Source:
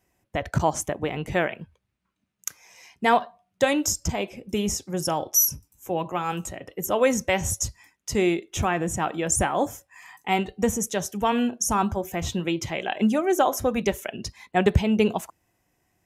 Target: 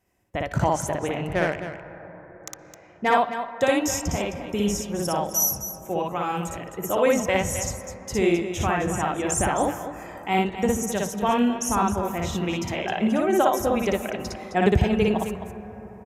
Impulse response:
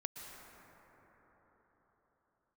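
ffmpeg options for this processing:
-filter_complex "[0:a]asettb=1/sr,asplit=3[link_01][link_02][link_03];[link_01]atrim=end=1.274[link_04];[link_02]atrim=start=1.27:end=3.08,asetpts=PTS-STARTPTS,afade=type=in:duration=0.004:curve=qsin,afade=type=out:start_time=1.806:duration=0.004:curve=qsin,adynamicsmooth=sensitivity=2.5:basefreq=1700[link_05];[link_03]atrim=start=3.076[link_06];[link_04][link_05]acrossfade=duration=0.004:curve1=hsin:curve2=qsin[link_07];[link_07][link_06]acrossfade=duration=0.004:curve1=qsin:curve2=hsin,aecho=1:1:58.31|262.4:0.891|0.316,asplit=2[link_08][link_09];[1:a]atrim=start_sample=2205,lowpass=3700[link_10];[link_09][link_10]afir=irnorm=-1:irlink=0,volume=-6dB[link_11];[link_08][link_11]amix=inputs=2:normalize=0,volume=-4dB"

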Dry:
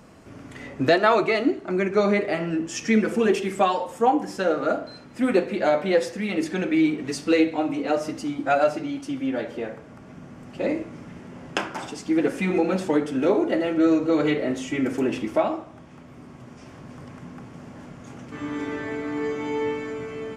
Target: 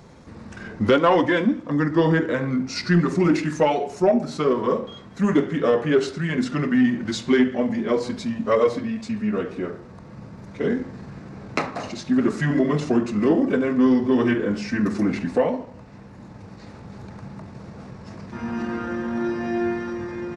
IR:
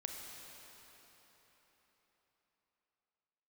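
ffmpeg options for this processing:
-af "acontrast=85,asetrate=35002,aresample=44100,atempo=1.25992,volume=-4.5dB"

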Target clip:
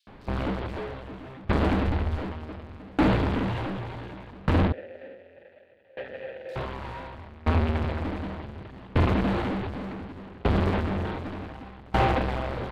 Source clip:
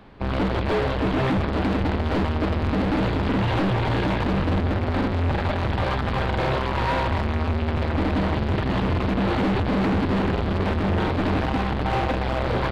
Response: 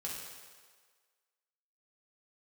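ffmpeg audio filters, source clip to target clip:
-filter_complex "[0:a]asettb=1/sr,asplit=3[link_01][link_02][link_03];[link_01]atrim=end=1.534[link_04];[link_02]atrim=start=1.53:end=2.12,asetpts=PTS-STARTPTS,afade=type=in:duration=0.004:curve=qsin,afade=type=out:start_time=0.586:duration=0.004:curve=qsin,asubboost=boost=11.5:cutoff=120[link_05];[link_03]atrim=start=2.116[link_06];[link_04][link_05]acrossfade=duration=0.004:curve1=hsin:curve2=qsin[link_07];[link_07][link_06]acrossfade=duration=0.004:curve1=qsin:curve2=hsin,asettb=1/sr,asplit=3[link_08][link_09][link_10];[link_08]atrim=end=4.654[link_11];[link_09]atrim=start=4.65:end=6.49,asetpts=PTS-STARTPTS,afade=type=in:duration=0.004:curve=qsin,afade=type=out:start_time=1.836:duration=0.004:curve=qsin,asplit=3[link_12][link_13][link_14];[link_12]bandpass=frequency=530:width_type=q:width=8,volume=0dB[link_15];[link_13]bandpass=frequency=1840:width_type=q:width=8,volume=-6dB[link_16];[link_14]bandpass=frequency=2480:width_type=q:width=8,volume=-9dB[link_17];[link_15][link_16][link_17]amix=inputs=3:normalize=0[link_18];[link_10]atrim=start=6.486[link_19];[link_11][link_18]acrossfade=duration=0.004:curve1=hsin:curve2=qsin[link_20];[link_20][link_19]acrossfade=duration=0.004:curve1=qsin:curve2=hsin,acrossover=split=4700[link_21][link_22];[link_21]adelay=70[link_23];[link_23][link_22]amix=inputs=2:normalize=0,aeval=exprs='val(0)*pow(10,-27*if(lt(mod(0.67*n/s,1),2*abs(0.67)/1000),1-mod(0.67*n/s,1)/(2*abs(0.67)/1000),(mod(0.67*n/s,1)-2*abs(0.67)/1000)/(1-2*abs(0.67)/1000))/20)':channel_layout=same,volume=3dB"

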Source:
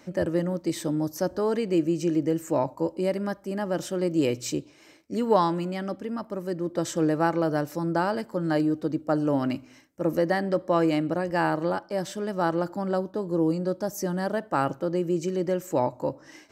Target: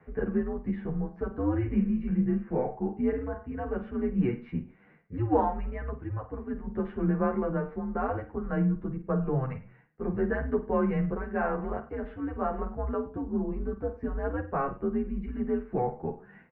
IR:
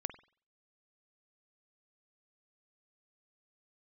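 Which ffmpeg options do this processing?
-filter_complex "[0:a]highpass=frequency=160:width_type=q:width=0.5412,highpass=frequency=160:width_type=q:width=1.307,lowpass=frequency=2300:width_type=q:width=0.5176,lowpass=frequency=2300:width_type=q:width=0.7071,lowpass=frequency=2300:width_type=q:width=1.932,afreqshift=-130,asettb=1/sr,asplit=3[link_01][link_02][link_03];[link_01]atrim=end=1.364[link_04];[link_02]atrim=start=1.36:end=3.51,asetpts=PTS-STARTPTS,afade=type=in:duration=0.004:curve=qsin,afade=type=out:start_time=2.146:duration=0.004:curve=qsin,asplit=2[link_05][link_06];[link_06]adelay=37,volume=-7dB[link_07];[link_05][link_07]amix=inputs=2:normalize=0,atrim=end_sample=94815[link_08];[link_03]atrim=start=3.506[link_09];[link_04][link_08]acrossfade=duration=0.004:curve1=hsin:curve2=qsin[link_10];[link_10][link_09]acrossfade=duration=0.004:curve1=qsin:curve2=hsin[link_11];[1:a]atrim=start_sample=2205,atrim=end_sample=6174[link_12];[link_11][link_12]afir=irnorm=-1:irlink=0,asplit=2[link_13][link_14];[link_14]adelay=9.7,afreqshift=2[link_15];[link_13][link_15]amix=inputs=2:normalize=1"

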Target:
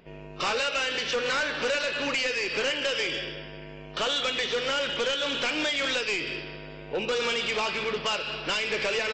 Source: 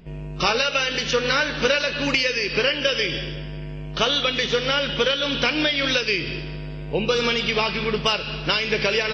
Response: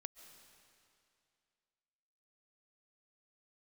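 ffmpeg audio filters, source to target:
-af "bass=frequency=250:gain=-15,treble=frequency=4000:gain=-6,aresample=16000,asoftclip=type=tanh:threshold=-23dB,aresample=44100"

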